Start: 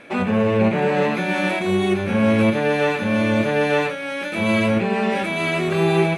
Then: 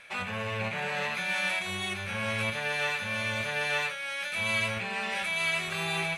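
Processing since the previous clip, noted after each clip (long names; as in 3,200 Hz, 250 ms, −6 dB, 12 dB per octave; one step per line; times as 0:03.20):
guitar amp tone stack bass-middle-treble 10-0-10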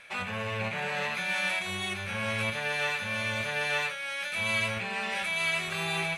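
no processing that can be heard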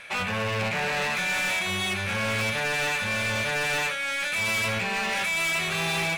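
gain into a clipping stage and back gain 31.5 dB
level +7.5 dB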